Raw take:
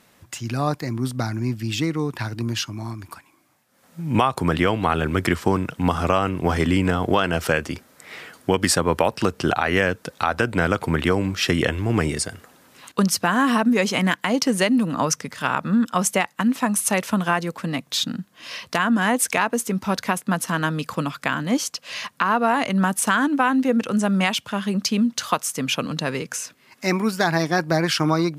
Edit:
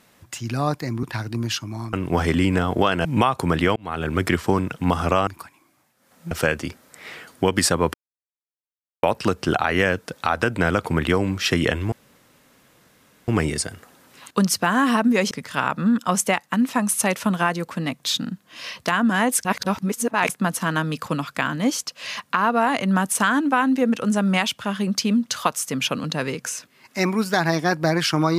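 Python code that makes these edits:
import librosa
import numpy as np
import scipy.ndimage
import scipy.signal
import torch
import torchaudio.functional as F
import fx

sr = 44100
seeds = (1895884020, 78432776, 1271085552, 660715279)

y = fx.edit(x, sr, fx.cut(start_s=1.03, length_s=1.06),
    fx.swap(start_s=2.99, length_s=1.04, other_s=6.25, other_length_s=1.12),
    fx.fade_in_span(start_s=4.74, length_s=0.4),
    fx.insert_silence(at_s=9.0, length_s=1.09),
    fx.insert_room_tone(at_s=11.89, length_s=1.36),
    fx.cut(start_s=13.92, length_s=1.26),
    fx.reverse_span(start_s=19.32, length_s=0.84), tone=tone)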